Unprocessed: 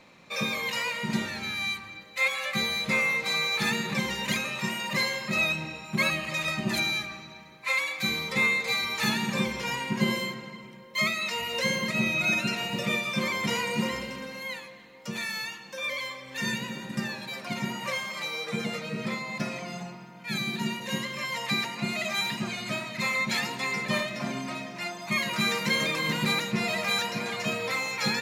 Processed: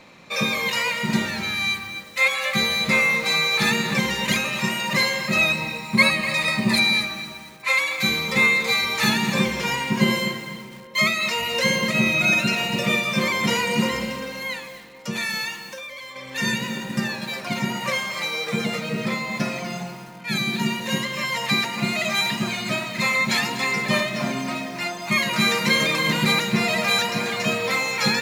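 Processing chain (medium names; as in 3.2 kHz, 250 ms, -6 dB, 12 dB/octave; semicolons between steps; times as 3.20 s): 5.52–7.05 s: rippled EQ curve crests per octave 0.94, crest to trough 9 dB; 15.62–16.16 s: compression 16:1, threshold -40 dBFS, peak gain reduction 13 dB; bit-crushed delay 245 ms, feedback 35%, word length 7-bit, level -12.5 dB; trim +6.5 dB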